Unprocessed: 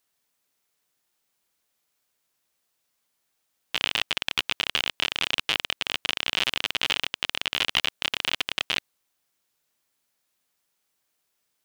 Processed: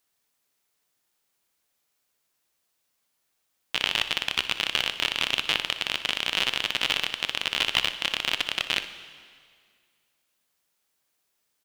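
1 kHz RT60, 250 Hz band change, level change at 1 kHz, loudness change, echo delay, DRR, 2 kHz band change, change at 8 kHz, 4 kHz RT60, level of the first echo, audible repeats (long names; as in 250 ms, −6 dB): 2.0 s, +0.5 dB, +0.5 dB, +0.5 dB, 61 ms, 9.5 dB, +0.5 dB, +0.5 dB, 1.9 s, −15.0 dB, 1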